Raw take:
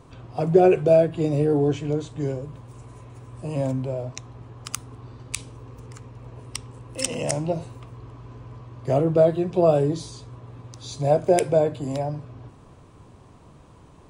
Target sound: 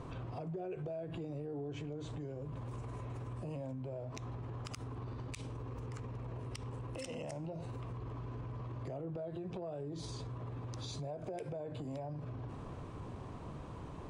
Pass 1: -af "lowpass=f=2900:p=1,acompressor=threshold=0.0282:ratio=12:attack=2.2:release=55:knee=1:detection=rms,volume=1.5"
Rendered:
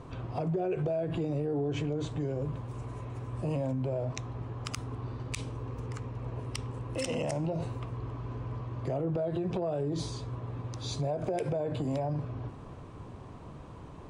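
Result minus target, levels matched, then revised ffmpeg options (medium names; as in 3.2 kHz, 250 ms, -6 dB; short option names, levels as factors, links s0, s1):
compression: peak gain reduction -10.5 dB
-af "lowpass=f=2900:p=1,acompressor=threshold=0.0075:ratio=12:attack=2.2:release=55:knee=1:detection=rms,volume=1.5"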